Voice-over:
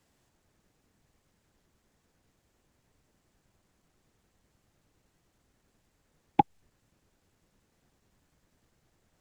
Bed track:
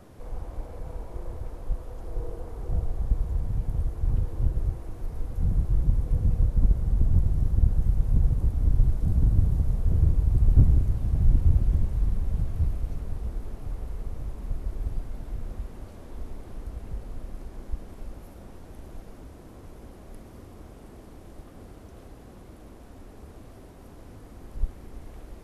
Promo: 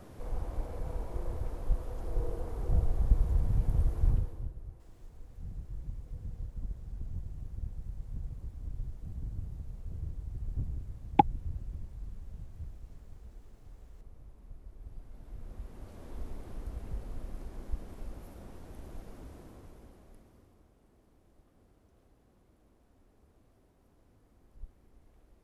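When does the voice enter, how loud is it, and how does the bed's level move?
4.80 s, +1.0 dB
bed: 0:04.07 −0.5 dB
0:04.56 −18 dB
0:14.74 −18 dB
0:16.07 −3.5 dB
0:19.37 −3.5 dB
0:20.71 −19 dB

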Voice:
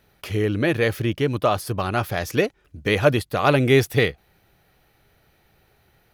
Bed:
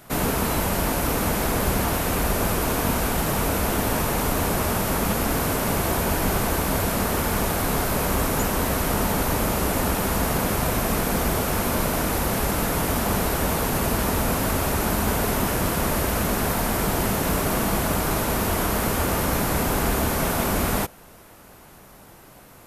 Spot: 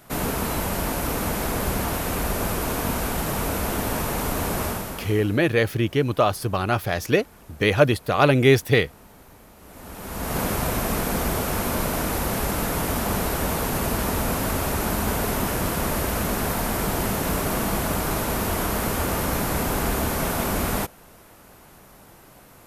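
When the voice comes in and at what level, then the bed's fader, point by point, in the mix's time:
4.75 s, +0.5 dB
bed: 0:04.66 −2.5 dB
0:05.54 −26.5 dB
0:09.56 −26.5 dB
0:10.39 −1.5 dB

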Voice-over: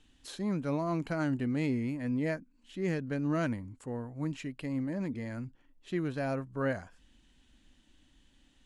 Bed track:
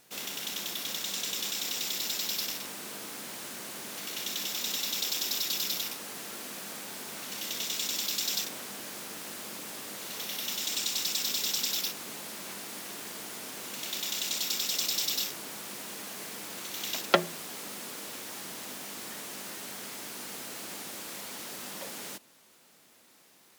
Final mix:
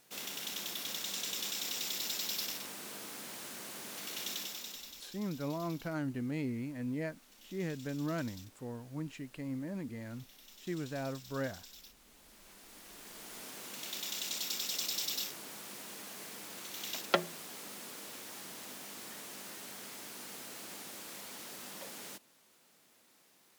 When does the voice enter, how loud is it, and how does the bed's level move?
4.75 s, −5.5 dB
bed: 0:04.32 −4.5 dB
0:05.16 −23 dB
0:11.96 −23 dB
0:13.41 −6 dB

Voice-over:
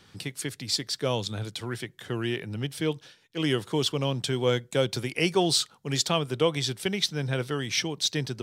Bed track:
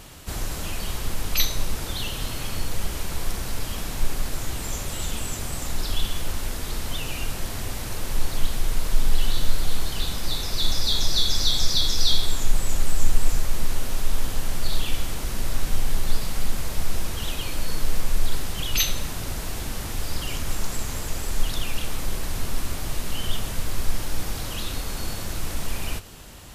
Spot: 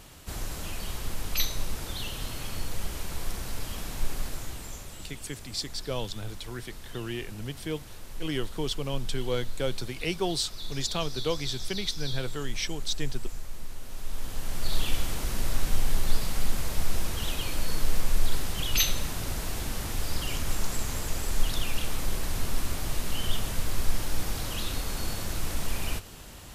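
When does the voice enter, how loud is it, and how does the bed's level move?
4.85 s, −5.5 dB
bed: 0:04.24 −5.5 dB
0:05.14 −15 dB
0:13.78 −15 dB
0:14.82 −2 dB

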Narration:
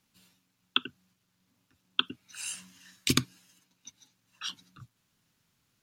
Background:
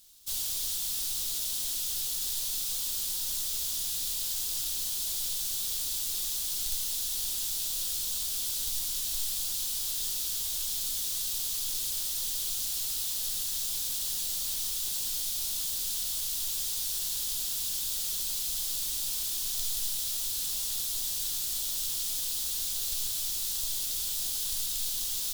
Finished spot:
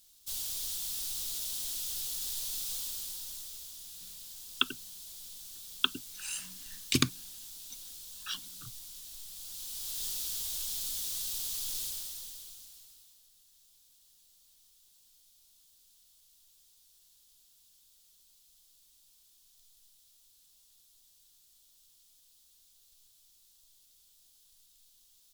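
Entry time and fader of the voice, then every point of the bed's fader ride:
3.85 s, −1.0 dB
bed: 0:02.76 −4.5 dB
0:03.75 −15 dB
0:09.28 −15 dB
0:10.04 −4 dB
0:11.82 −4 dB
0:13.29 −31.5 dB

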